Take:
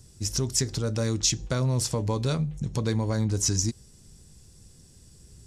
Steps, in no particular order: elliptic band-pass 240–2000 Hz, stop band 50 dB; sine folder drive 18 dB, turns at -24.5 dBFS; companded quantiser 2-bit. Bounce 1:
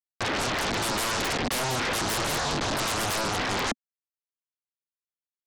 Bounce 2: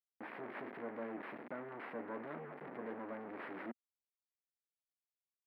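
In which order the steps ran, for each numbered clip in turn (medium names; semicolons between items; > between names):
companded quantiser > elliptic band-pass > sine folder; companded quantiser > sine folder > elliptic band-pass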